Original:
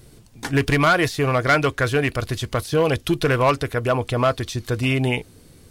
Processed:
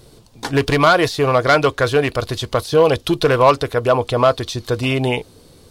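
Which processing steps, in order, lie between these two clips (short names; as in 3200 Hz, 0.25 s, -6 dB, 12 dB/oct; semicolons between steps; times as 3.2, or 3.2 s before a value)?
ten-band EQ 500 Hz +6 dB, 1000 Hz +6 dB, 2000 Hz -3 dB, 4000 Hz +7 dB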